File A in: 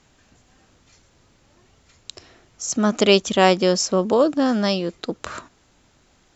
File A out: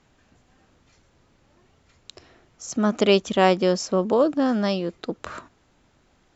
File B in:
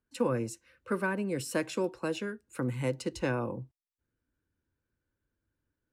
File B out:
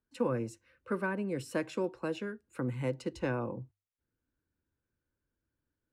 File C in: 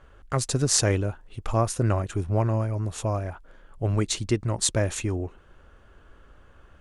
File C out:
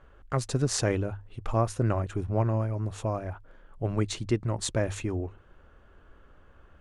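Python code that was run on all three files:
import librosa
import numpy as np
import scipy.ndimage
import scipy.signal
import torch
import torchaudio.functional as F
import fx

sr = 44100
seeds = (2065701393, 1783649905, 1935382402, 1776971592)

y = fx.high_shelf(x, sr, hz=4100.0, db=-9.5)
y = fx.hum_notches(y, sr, base_hz=50, count=2)
y = F.gain(torch.from_numpy(y), -2.0).numpy()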